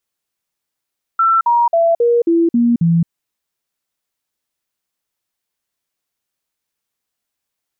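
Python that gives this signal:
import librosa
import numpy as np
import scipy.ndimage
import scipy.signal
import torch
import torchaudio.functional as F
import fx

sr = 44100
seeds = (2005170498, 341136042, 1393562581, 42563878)

y = fx.stepped_sweep(sr, from_hz=1340.0, direction='down', per_octave=2, tones=7, dwell_s=0.22, gap_s=0.05, level_db=-9.5)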